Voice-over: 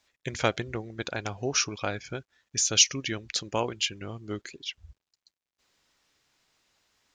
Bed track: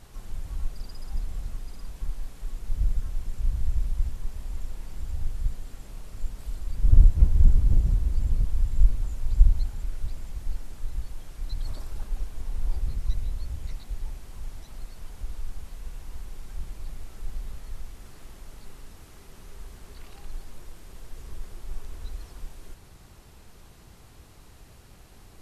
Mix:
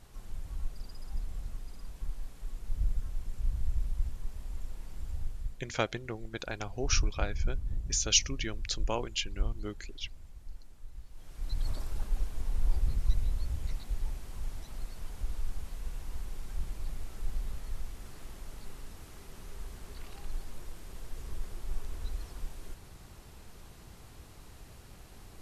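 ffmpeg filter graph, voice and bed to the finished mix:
-filter_complex "[0:a]adelay=5350,volume=0.562[s0];[1:a]volume=2.66,afade=t=out:st=5.15:d=0.5:silence=0.354813,afade=t=in:st=11.1:d=0.52:silence=0.199526[s1];[s0][s1]amix=inputs=2:normalize=0"

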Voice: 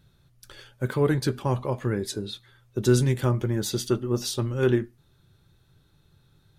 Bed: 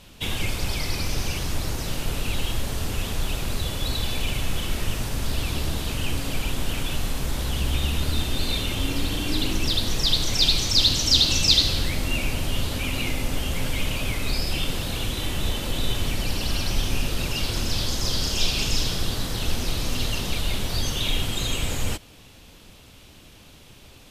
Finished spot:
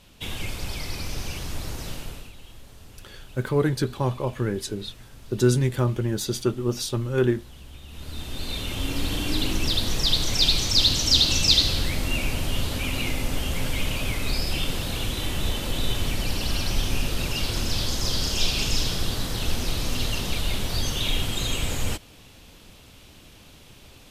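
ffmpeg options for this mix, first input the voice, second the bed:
-filter_complex "[0:a]adelay=2550,volume=1.06[s0];[1:a]volume=5.01,afade=t=out:st=1.88:d=0.44:silence=0.188365,afade=t=in:st=7.87:d=1.27:silence=0.112202[s1];[s0][s1]amix=inputs=2:normalize=0"

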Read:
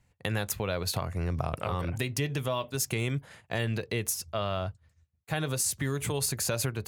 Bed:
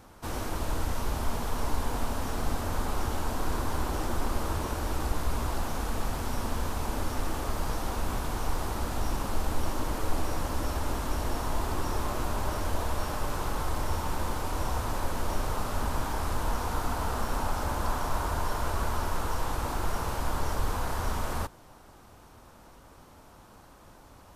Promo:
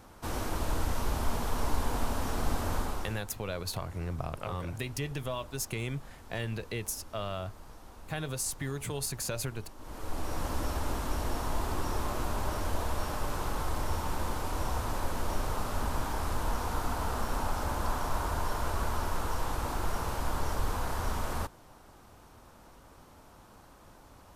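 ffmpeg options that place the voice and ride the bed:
-filter_complex "[0:a]adelay=2800,volume=0.562[s0];[1:a]volume=6.68,afade=t=out:st=2.73:d=0.5:silence=0.11885,afade=t=in:st=9.78:d=0.69:silence=0.141254[s1];[s0][s1]amix=inputs=2:normalize=0"

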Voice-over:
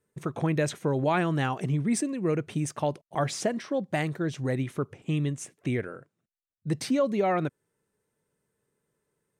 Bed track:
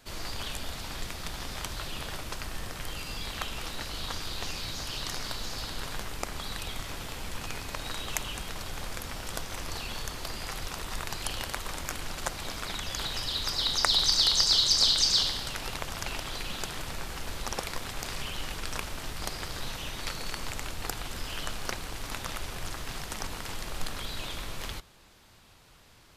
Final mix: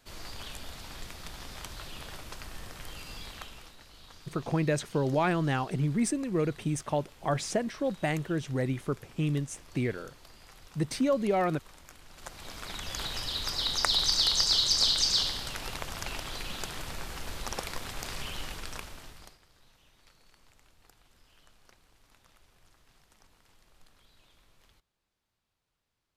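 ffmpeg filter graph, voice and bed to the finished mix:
-filter_complex "[0:a]adelay=4100,volume=0.841[s0];[1:a]volume=2.82,afade=t=out:st=3.18:d=0.58:silence=0.281838,afade=t=in:st=12.09:d=0.88:silence=0.177828,afade=t=out:st=18.37:d=1.02:silence=0.0595662[s1];[s0][s1]amix=inputs=2:normalize=0"

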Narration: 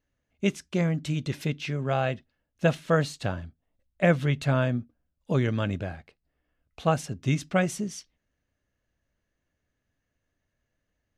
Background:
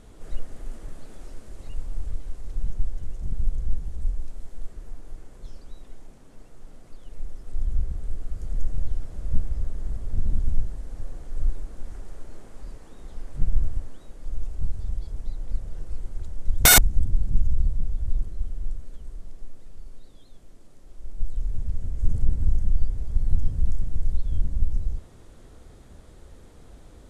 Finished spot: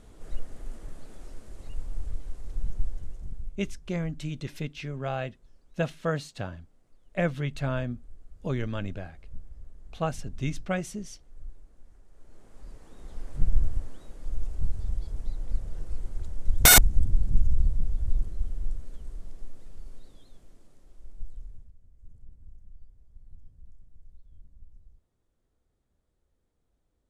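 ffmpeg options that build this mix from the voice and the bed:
-filter_complex "[0:a]adelay=3150,volume=0.531[s0];[1:a]volume=5.01,afade=t=out:st=2.88:d=0.69:silence=0.177828,afade=t=in:st=12.1:d=1.2:silence=0.141254,afade=t=out:st=19.97:d=1.76:silence=0.0446684[s1];[s0][s1]amix=inputs=2:normalize=0"

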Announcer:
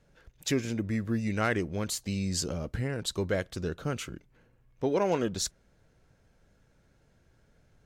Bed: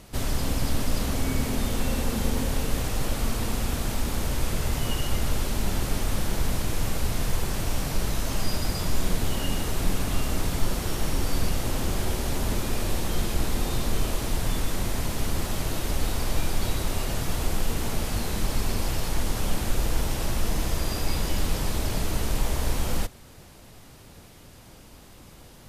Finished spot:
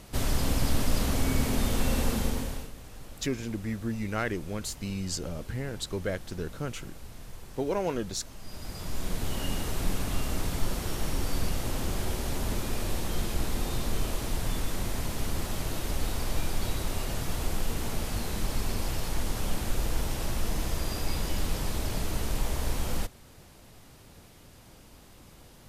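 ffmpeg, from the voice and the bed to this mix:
-filter_complex "[0:a]adelay=2750,volume=0.75[s0];[1:a]volume=5.01,afade=t=out:st=2.07:d=0.65:silence=0.125893,afade=t=in:st=8.41:d=1.04:silence=0.188365[s1];[s0][s1]amix=inputs=2:normalize=0"

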